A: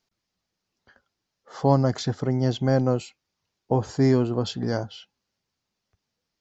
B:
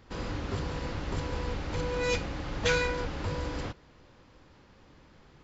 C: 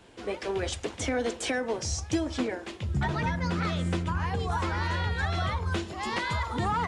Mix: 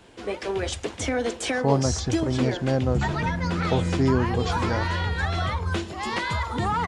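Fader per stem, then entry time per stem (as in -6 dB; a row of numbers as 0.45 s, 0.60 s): -2.5 dB, -10.5 dB, +3.0 dB; 0.00 s, 1.80 s, 0.00 s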